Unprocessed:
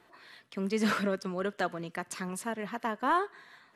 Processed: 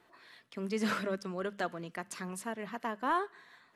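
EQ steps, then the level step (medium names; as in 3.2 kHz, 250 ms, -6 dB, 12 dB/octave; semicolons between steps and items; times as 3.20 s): hum notches 50/100/150/200 Hz; -3.5 dB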